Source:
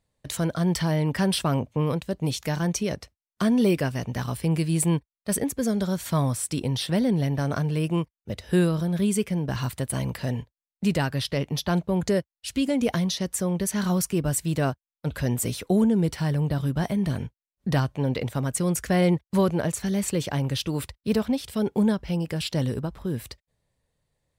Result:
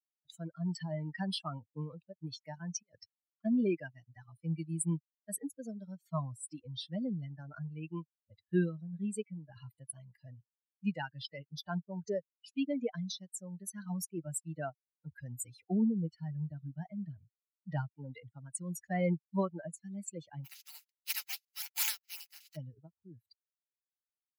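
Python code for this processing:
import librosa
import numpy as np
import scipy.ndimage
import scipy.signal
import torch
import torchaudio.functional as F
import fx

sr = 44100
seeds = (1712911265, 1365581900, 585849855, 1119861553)

y = fx.over_compress(x, sr, threshold_db=-32.0, ratio=-0.5, at=(2.82, 3.45))
y = fx.spec_flatten(y, sr, power=0.12, at=(20.44, 22.55), fade=0.02)
y = fx.bin_expand(y, sr, power=3.0)
y = scipy.signal.sosfilt(scipy.signal.butter(4, 140.0, 'highpass', fs=sr, output='sos'), y)
y = y * librosa.db_to_amplitude(-5.0)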